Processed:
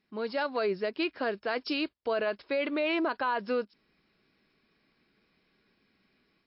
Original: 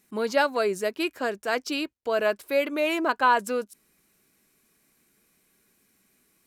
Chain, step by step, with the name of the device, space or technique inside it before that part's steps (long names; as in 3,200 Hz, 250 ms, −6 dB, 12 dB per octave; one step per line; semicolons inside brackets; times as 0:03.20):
low-bitrate web radio (automatic gain control gain up to 6.5 dB; brickwall limiter −14 dBFS, peak gain reduction 9.5 dB; level −6.5 dB; MP3 40 kbit/s 12,000 Hz)